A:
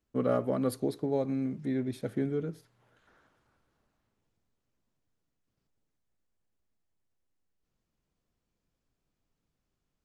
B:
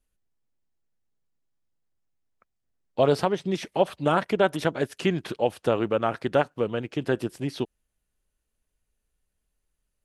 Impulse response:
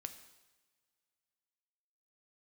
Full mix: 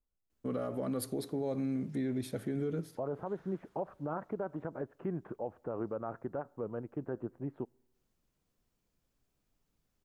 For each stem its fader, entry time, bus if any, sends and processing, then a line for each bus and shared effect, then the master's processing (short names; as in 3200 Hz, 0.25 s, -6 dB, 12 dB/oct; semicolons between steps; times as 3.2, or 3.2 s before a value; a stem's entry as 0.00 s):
-3.5 dB, 0.30 s, send -10 dB, AGC gain up to 3 dB
-10.0 dB, 0.00 s, send -18 dB, LPF 1300 Hz 24 dB/oct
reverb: on, pre-delay 3 ms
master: high shelf 8200 Hz +6.5 dB; limiter -27 dBFS, peak gain reduction 9.5 dB